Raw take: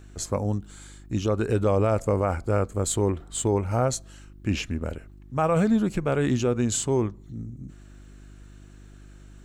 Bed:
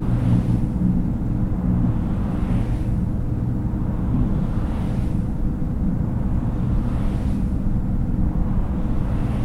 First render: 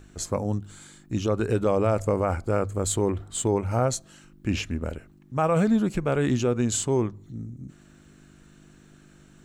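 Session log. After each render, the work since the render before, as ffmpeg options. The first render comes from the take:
-af "bandreject=f=50:t=h:w=4,bandreject=f=100:t=h:w=4"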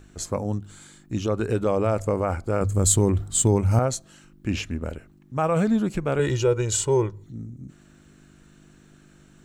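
-filter_complex "[0:a]asettb=1/sr,asplit=3[a][b][c];[a]atrim=end=2.614[d];[b]atrim=start=2.61:end=3.79,asetpts=PTS-STARTPTS,afade=t=in:d=0.004:c=qsin,afade=t=out:st=1.176:d=0.004:c=qsin,bass=f=250:g=9,treble=f=4k:g=9[e];[c]atrim=start=3.786[f];[d][e]acrossfade=d=0.004:c1=hsin:c2=qsin[g];[g][f]acrossfade=d=0.004:c1=qsin:c2=hsin,asettb=1/sr,asplit=3[h][i][j];[h]atrim=end=6.194[k];[i]atrim=start=6.19:end=7.24,asetpts=PTS-STARTPTS,afade=t=in:d=0.004:c=qsin,afade=t=out:st=1.046:d=0.004:c=qsin,aecho=1:1:2.1:0.88,atrim=end_sample=46305[l];[j]atrim=start=7.236[m];[k][l]acrossfade=d=0.004:c1=hsin:c2=qsin[n];[n][m]acrossfade=d=0.004:c1=qsin:c2=hsin"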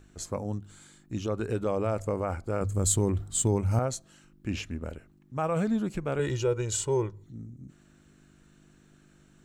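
-af "volume=-6dB"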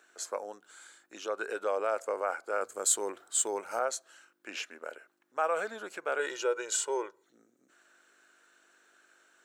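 -af "highpass=f=460:w=0.5412,highpass=f=460:w=1.3066,equalizer=f=1.5k:t=o:w=0.37:g=8.5"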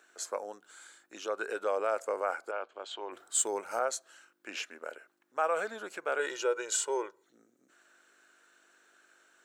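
-filter_complex "[0:a]asplit=3[a][b][c];[a]afade=t=out:st=2.5:d=0.02[d];[b]highpass=450,equalizer=f=470:t=q:w=4:g=-8,equalizer=f=1.3k:t=q:w=4:g=-6,equalizer=f=1.9k:t=q:w=4:g=-8,equalizer=f=3.1k:t=q:w=4:g=7,lowpass=f=3.3k:w=0.5412,lowpass=f=3.3k:w=1.3066,afade=t=in:st=2.5:d=0.02,afade=t=out:st=3.11:d=0.02[e];[c]afade=t=in:st=3.11:d=0.02[f];[d][e][f]amix=inputs=3:normalize=0"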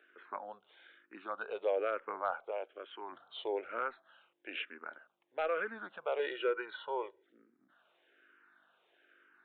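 -filter_complex "[0:a]aresample=8000,volume=20.5dB,asoftclip=hard,volume=-20.5dB,aresample=44100,asplit=2[a][b];[b]afreqshift=-1.1[c];[a][c]amix=inputs=2:normalize=1"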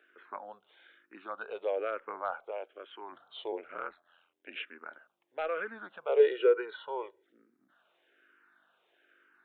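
-filter_complex "[0:a]asplit=3[a][b][c];[a]afade=t=out:st=3.51:d=0.02[d];[b]aeval=exprs='val(0)*sin(2*PI*43*n/s)':c=same,afade=t=in:st=3.51:d=0.02,afade=t=out:st=4.55:d=0.02[e];[c]afade=t=in:st=4.55:d=0.02[f];[d][e][f]amix=inputs=3:normalize=0,asettb=1/sr,asplit=3[g][h][i];[g]atrim=end=6.094[j];[h]atrim=start=6.09:end=6.74,asetpts=PTS-STARTPTS,afade=t=in:d=0.004:c=qsin,afade=t=out:st=0.646:d=0.004:c=qsin,equalizer=f=440:w=3.6:g=14.5[k];[i]atrim=start=6.736[l];[j][k]acrossfade=d=0.004:c1=hsin:c2=qsin[m];[m][l]acrossfade=d=0.004:c1=qsin:c2=hsin"

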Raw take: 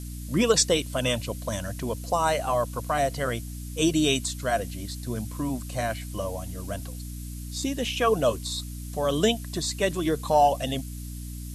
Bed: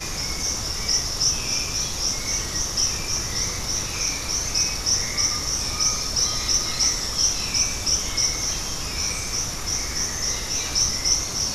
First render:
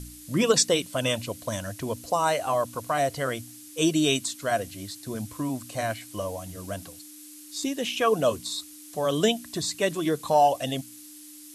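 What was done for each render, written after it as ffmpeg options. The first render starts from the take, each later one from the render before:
-af "bandreject=f=60:t=h:w=4,bandreject=f=120:t=h:w=4,bandreject=f=180:t=h:w=4,bandreject=f=240:t=h:w=4"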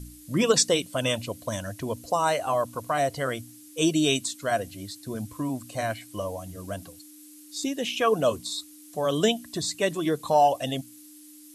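-af "afftdn=nr=6:nf=-46"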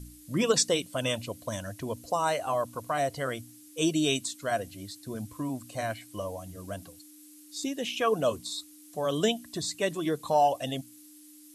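-af "volume=-3.5dB"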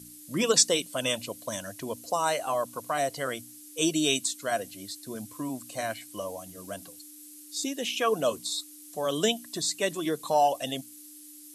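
-af "highpass=170,highshelf=f=3.6k:g=6.5"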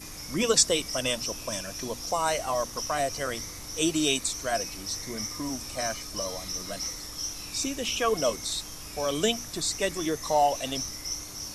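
-filter_complex "[1:a]volume=-13.5dB[a];[0:a][a]amix=inputs=2:normalize=0"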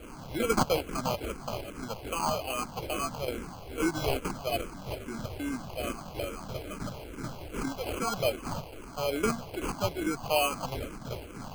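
-filter_complex "[0:a]acrusher=samples=24:mix=1:aa=0.000001,asplit=2[a][b];[b]afreqshift=-2.4[c];[a][c]amix=inputs=2:normalize=1"

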